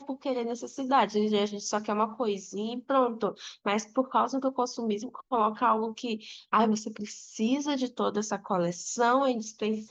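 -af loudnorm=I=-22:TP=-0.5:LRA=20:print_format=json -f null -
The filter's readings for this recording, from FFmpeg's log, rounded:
"input_i" : "-29.0",
"input_tp" : "-11.2",
"input_lra" : "0.8",
"input_thresh" : "-39.2",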